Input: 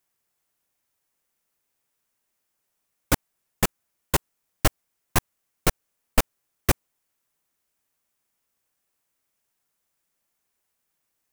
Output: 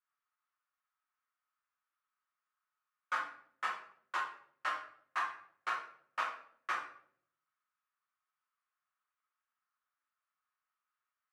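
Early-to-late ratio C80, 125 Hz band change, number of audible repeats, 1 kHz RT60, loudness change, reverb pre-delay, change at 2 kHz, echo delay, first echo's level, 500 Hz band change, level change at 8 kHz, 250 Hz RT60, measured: 9.0 dB, under -40 dB, none, 0.55 s, -12.0 dB, 5 ms, -6.0 dB, none, none, -22.0 dB, -28.5 dB, 0.90 s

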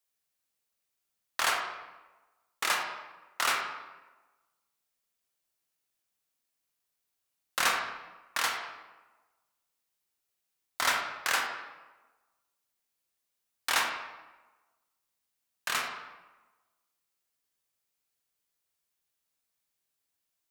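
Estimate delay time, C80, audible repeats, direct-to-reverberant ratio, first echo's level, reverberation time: none, 6.0 dB, none, 1.5 dB, none, 1.2 s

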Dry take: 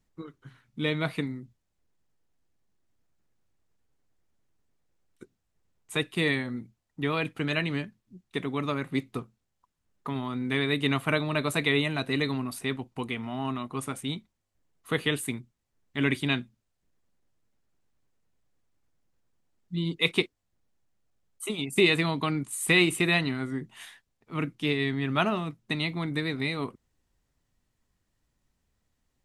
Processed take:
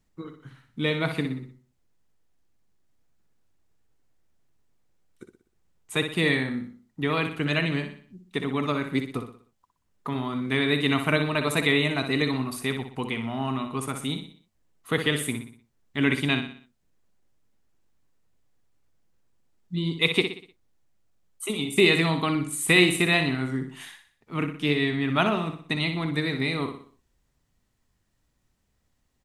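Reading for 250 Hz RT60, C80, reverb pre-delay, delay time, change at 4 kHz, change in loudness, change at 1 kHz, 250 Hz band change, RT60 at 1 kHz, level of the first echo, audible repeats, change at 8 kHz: none, none, none, 61 ms, +3.5 dB, +3.0 dB, +3.0 dB, +3.0 dB, none, -8.0 dB, 4, +3.5 dB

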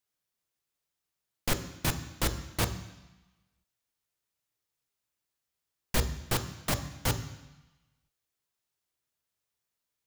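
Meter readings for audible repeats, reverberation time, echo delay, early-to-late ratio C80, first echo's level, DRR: none, 1.0 s, none, 13.5 dB, none, 8.0 dB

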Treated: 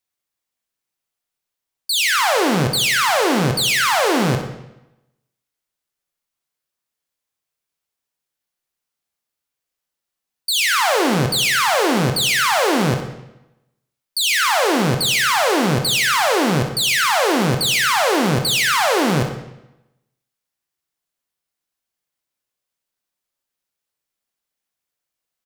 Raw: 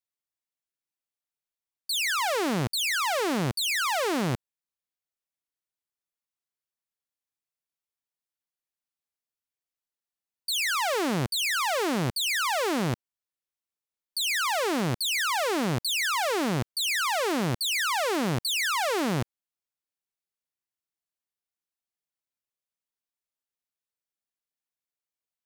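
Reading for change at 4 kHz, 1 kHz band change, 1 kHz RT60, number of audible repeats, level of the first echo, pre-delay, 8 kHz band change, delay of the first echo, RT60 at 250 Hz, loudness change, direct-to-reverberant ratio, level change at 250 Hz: +9.5 dB, +10.0 dB, 0.90 s, 1, -10.0 dB, 22 ms, +9.5 dB, 63 ms, 0.90 s, +9.5 dB, 4.0 dB, +9.5 dB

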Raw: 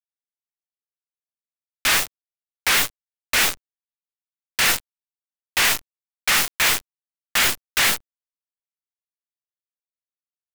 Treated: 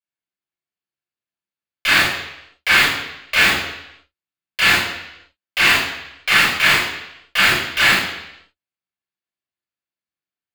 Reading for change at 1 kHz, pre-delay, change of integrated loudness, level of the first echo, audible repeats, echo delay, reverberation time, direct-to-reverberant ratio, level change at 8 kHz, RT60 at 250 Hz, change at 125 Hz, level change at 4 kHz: +5.5 dB, 25 ms, +4.0 dB, none, none, none, 0.85 s, -7.0 dB, -5.5 dB, 0.80 s, +8.5 dB, +4.5 dB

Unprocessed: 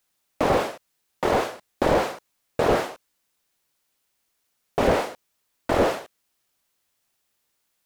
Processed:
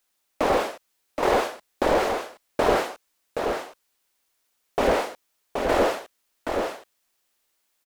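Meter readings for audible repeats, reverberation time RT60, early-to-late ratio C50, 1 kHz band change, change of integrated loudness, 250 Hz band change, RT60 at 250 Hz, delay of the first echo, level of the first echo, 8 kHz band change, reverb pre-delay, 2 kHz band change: 1, none, none, +1.0 dB, -1.0 dB, -1.5 dB, none, 0.774 s, -5.0 dB, +1.0 dB, none, +1.0 dB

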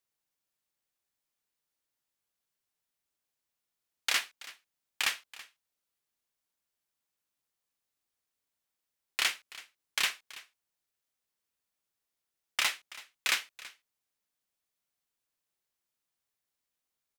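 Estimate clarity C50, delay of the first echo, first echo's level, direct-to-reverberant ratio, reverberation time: none, 0.329 s, -18.5 dB, none, none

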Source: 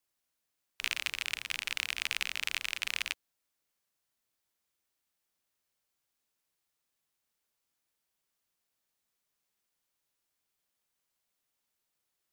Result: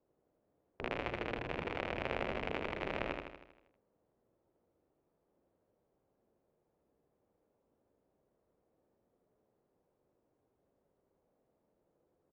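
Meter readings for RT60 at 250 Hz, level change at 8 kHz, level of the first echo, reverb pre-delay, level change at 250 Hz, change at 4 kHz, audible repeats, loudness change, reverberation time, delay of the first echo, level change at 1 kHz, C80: none, under -25 dB, -4.5 dB, none, +20.0 dB, -14.5 dB, 7, -5.5 dB, none, 79 ms, +7.0 dB, none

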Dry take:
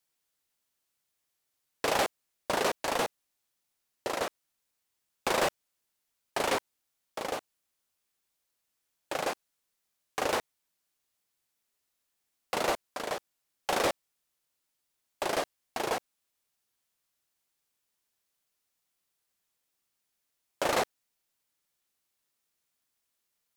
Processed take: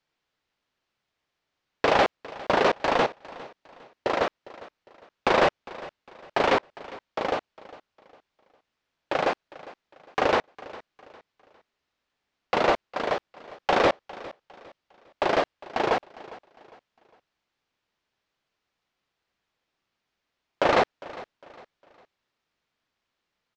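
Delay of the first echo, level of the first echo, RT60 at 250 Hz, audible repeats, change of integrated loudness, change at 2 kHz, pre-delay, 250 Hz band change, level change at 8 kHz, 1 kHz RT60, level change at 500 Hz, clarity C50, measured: 0.405 s, -19.0 dB, none, 2, +6.5 dB, +7.0 dB, none, +8.0 dB, -8.0 dB, none, +8.0 dB, none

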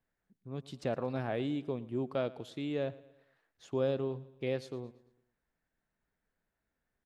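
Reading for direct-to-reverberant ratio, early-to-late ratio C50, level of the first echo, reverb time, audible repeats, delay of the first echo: none, none, -19.5 dB, none, 3, 0.113 s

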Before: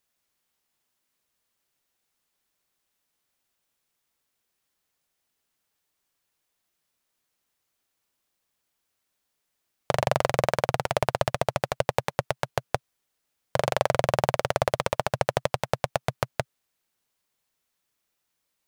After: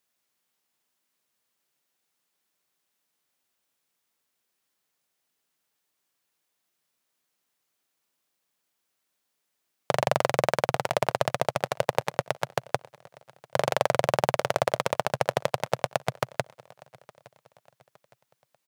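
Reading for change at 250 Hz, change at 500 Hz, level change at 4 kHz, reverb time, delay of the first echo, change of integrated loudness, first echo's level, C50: -1.0 dB, 0.0 dB, 0.0 dB, none, 0.863 s, 0.0 dB, -24.0 dB, none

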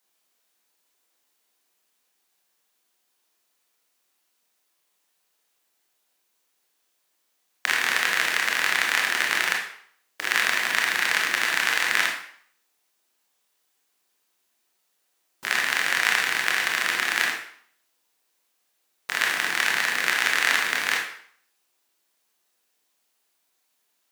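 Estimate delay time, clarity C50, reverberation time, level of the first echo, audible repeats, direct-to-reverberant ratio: none, 4.5 dB, 0.60 s, none, none, -0.5 dB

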